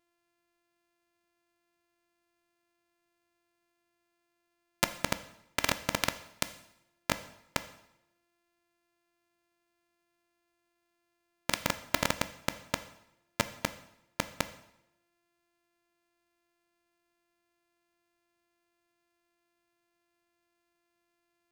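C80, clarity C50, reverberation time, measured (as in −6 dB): 16.5 dB, 14.5 dB, 0.80 s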